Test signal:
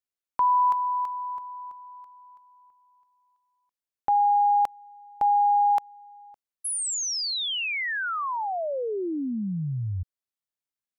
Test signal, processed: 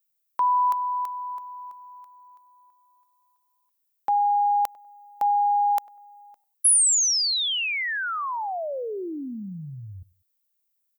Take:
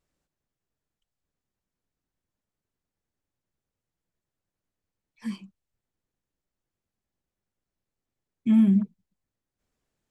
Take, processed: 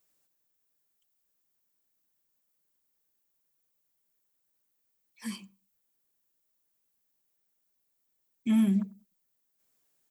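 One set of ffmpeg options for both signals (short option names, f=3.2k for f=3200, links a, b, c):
-filter_complex "[0:a]aemphasis=mode=production:type=bsi,asplit=2[a][b];[b]adelay=98,lowpass=f=1.1k:p=1,volume=-21dB,asplit=2[c][d];[d]adelay=98,lowpass=f=1.1k:p=1,volume=0.31[e];[a][c][e]amix=inputs=3:normalize=0"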